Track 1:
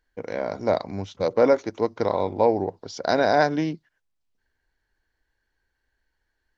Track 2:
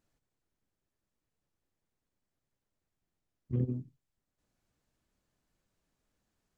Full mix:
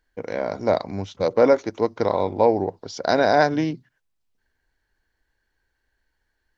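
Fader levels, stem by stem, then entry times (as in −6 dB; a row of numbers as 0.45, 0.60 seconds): +2.0, −13.0 decibels; 0.00, 0.00 seconds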